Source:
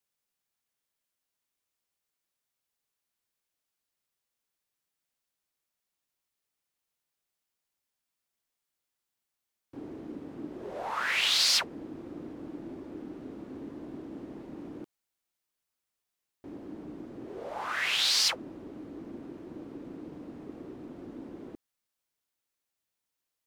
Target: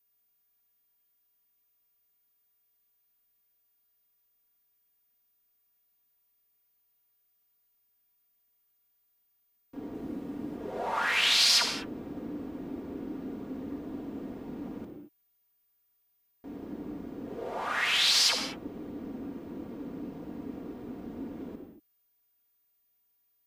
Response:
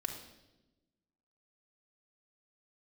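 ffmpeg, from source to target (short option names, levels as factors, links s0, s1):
-filter_complex "[0:a]asettb=1/sr,asplit=3[s0][s1][s2];[s0]atrim=end=9.944[s3];[s1]atrim=start=9.94:end=10.56,asetpts=PTS-STARTPTS,afade=t=in:d=0.004:c=qsin,afade=t=out:st=0.616:d=0.004:c=qsin,highshelf=f=9100:g=8.5[s4];[s2]atrim=start=10.556[s5];[s3][s4]acrossfade=d=0.004:c1=hsin:c2=qsin[s6];[s6][s5]acrossfade=d=0.004:c1=qsin:c2=hsin,aeval=exprs='val(0)+0.000501*sin(2*PI*15000*n/s)':c=same[s7];[1:a]atrim=start_sample=2205,afade=t=out:st=0.2:d=0.01,atrim=end_sample=9261,asetrate=27783,aresample=44100[s8];[s7][s8]afir=irnorm=-1:irlink=0,volume=0.891"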